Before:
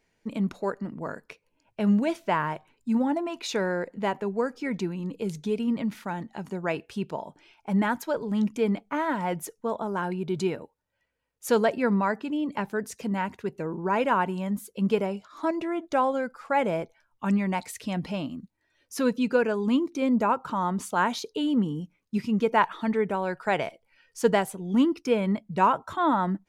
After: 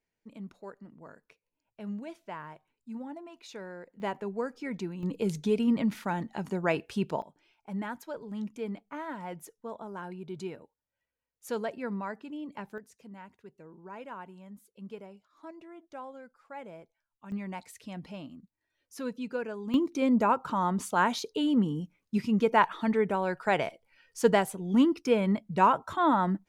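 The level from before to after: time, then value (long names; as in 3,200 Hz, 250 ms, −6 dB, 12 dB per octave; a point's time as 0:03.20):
−15.5 dB
from 0:04.00 −6 dB
from 0:05.03 +1 dB
from 0:07.22 −11 dB
from 0:12.78 −19 dB
from 0:17.32 −11 dB
from 0:19.74 −1 dB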